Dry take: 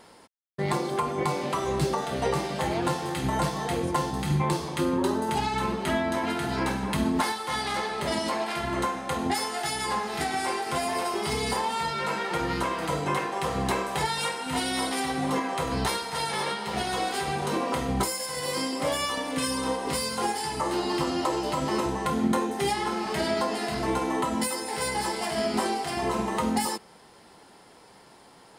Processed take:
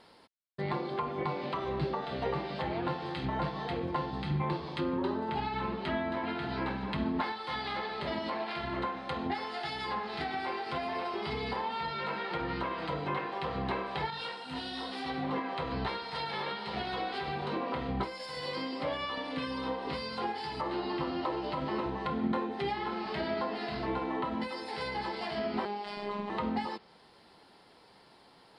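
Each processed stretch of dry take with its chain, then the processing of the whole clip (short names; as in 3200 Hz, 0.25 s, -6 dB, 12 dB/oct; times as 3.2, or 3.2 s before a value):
14.1–15.06 notch 2200 Hz, Q 10 + detuned doubles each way 31 cents
25.65–26.3 low shelf 71 Hz -12 dB + robotiser 205 Hz
whole clip: resonant high shelf 5300 Hz -6 dB, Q 3; treble ducked by the level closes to 2700 Hz, closed at -23.5 dBFS; gain -6.5 dB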